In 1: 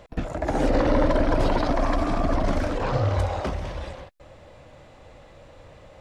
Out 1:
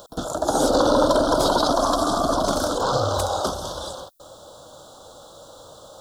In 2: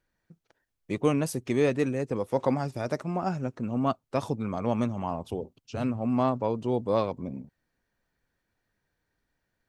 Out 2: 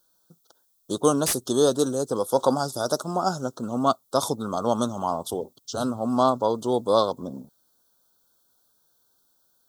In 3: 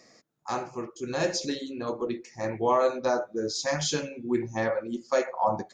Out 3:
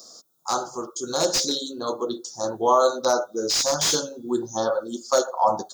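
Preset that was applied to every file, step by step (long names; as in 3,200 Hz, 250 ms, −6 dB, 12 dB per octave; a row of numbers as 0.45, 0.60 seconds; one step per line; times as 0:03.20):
elliptic band-stop filter 1,400–3,400 Hz, stop band 70 dB
RIAA equalisation recording
slew-rate limiting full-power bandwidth 240 Hz
normalise the peak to −6 dBFS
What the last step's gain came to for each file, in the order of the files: +7.5, +8.0, +7.0 decibels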